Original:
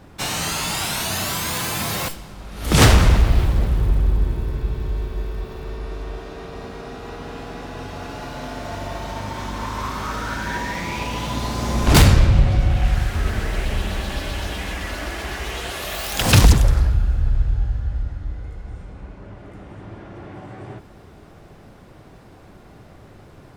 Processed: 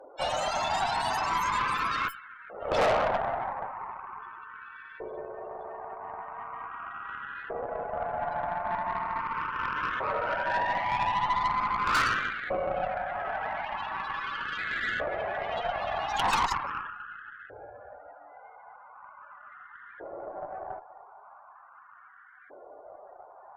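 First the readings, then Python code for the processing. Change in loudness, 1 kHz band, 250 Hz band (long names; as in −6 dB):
−9.5 dB, +1.0 dB, −19.0 dB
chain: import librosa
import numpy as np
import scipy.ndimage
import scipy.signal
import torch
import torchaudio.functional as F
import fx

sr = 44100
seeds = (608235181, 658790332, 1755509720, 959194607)

y = fx.filter_lfo_highpass(x, sr, shape='saw_up', hz=0.4, low_hz=510.0, high_hz=1600.0, q=3.4)
y = fx.spec_topn(y, sr, count=32)
y = fx.tube_stage(y, sr, drive_db=21.0, bias=0.65)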